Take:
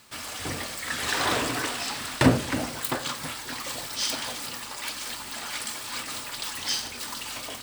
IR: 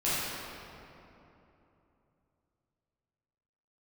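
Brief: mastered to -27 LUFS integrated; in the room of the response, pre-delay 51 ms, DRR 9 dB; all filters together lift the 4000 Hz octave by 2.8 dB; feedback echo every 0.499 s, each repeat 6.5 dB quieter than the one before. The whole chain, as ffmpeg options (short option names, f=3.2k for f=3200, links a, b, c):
-filter_complex "[0:a]equalizer=f=4k:t=o:g=3.5,aecho=1:1:499|998|1497|1996|2495|2994:0.473|0.222|0.105|0.0491|0.0231|0.0109,asplit=2[a][b];[1:a]atrim=start_sample=2205,adelay=51[c];[b][c]afir=irnorm=-1:irlink=0,volume=-20dB[d];[a][d]amix=inputs=2:normalize=0,volume=-1dB"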